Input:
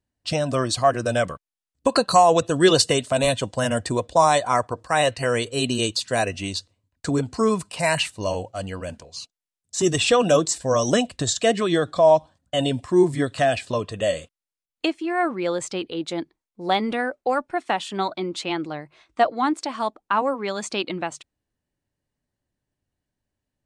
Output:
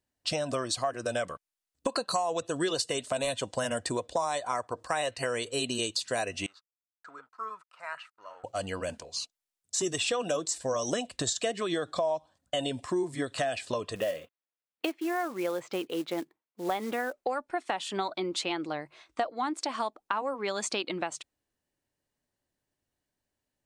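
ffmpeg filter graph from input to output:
-filter_complex "[0:a]asettb=1/sr,asplit=3[a][b][c];[a]atrim=end=6.464[d];[b]atrim=start=6.46:end=8.44,asetpts=PTS-STARTPTS,afade=t=in:d=0.004:c=qsin,afade=t=out:st=1.976:d=0.004:c=qsin,aeval=exprs='sgn(val(0))*max(abs(val(0))-0.0075,0)':c=same,bandpass=f=1.3k:t=q:w=8.9[e];[c]atrim=start=8.436[f];[d][e]acrossfade=d=0.004:c1=hsin:c2=qsin[g];[g][f]acrossfade=d=0.004:c1=qsin:c2=hsin,asettb=1/sr,asplit=3[h][i][j];[h]atrim=end=13.954[k];[i]atrim=start=13.95:end=17.13,asetpts=PTS-STARTPTS,afade=t=in:d=0.004:c=qsin,afade=t=out:st=3.176:d=0.004:c=qsin,highpass=110,lowpass=2.5k,acrusher=bits=5:mode=log:mix=0:aa=0.000001[l];[j]atrim=start=17.126[m];[k][l]acrossfade=d=0.004:c1=hsin:c2=qsin[n];[n][m]acrossfade=d=0.004:c1=qsin:c2=hsin,bass=f=250:g=-8,treble=f=4k:g=2,acompressor=threshold=-28dB:ratio=5"

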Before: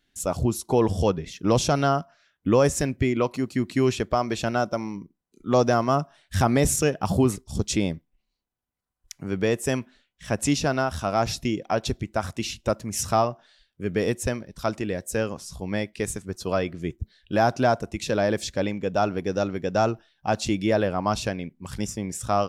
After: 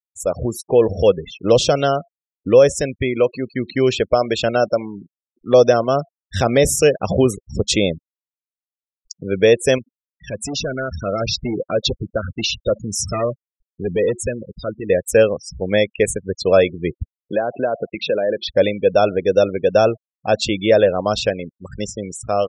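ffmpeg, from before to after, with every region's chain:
-filter_complex "[0:a]asettb=1/sr,asplit=3[a][b][c];[a]atrim=end=9.784[d];[b]atrim=start=9.78:end=14.9,asetpts=PTS-STARTPTS,afade=t=in:d=0.004:c=qsin,afade=t=out:st=5.116:d=0.004:c=qsin,equalizer=f=780:t=o:w=0.5:g=-13.5,volume=24.5dB,asoftclip=hard,volume=-24.5dB,acompressor=threshold=-34dB:ratio=2.5:attack=3.2:release=140:knee=1:detection=peak[e];[c]atrim=start=14.896[f];[d][e]acrossfade=d=0.004:c1=hsin:c2=qsin[g];[g][f]acrossfade=d=0.004:c1=qsin:c2=hsin,asettb=1/sr,asplit=3[h][i][j];[h]atrim=end=17.174[k];[i]atrim=start=17.17:end=18.49,asetpts=PTS-STARTPTS,afade=t=in:d=0.004:c=qsin,afade=t=out:st=1.316:d=0.004:c=qsin,highpass=170,lowpass=3.8k,acompressor=threshold=-27dB:ratio=4:attack=3.2:release=140:knee=1:detection=peak[l];[j]atrim=start=18.486[m];[k][l]acrossfade=d=0.004:c1=hsin:c2=qsin[n];[n][m]acrossfade=d=0.004:c1=qsin:c2=hsin,afftfilt=real='re*gte(hypot(re,im),0.0224)':imag='im*gte(hypot(re,im),0.0224)':win_size=1024:overlap=0.75,firequalizer=gain_entry='entry(300,0);entry(510,12);entry(870,-4);entry(1600,4);entry(3700,11);entry(6000,3)':delay=0.05:min_phase=1,dynaudnorm=f=280:g=7:m=11.5dB,volume=-1dB"

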